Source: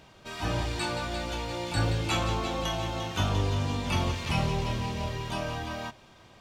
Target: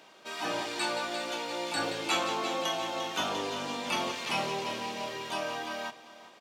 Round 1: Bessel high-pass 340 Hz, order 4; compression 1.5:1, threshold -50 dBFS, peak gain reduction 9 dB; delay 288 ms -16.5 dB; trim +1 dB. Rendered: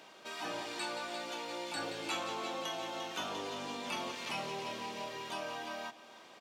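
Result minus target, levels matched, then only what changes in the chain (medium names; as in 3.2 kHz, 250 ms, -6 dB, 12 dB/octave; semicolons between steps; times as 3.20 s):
compression: peak gain reduction +9 dB; echo 102 ms early
change: delay 390 ms -16.5 dB; remove: compression 1.5:1, threshold -50 dBFS, peak gain reduction 9 dB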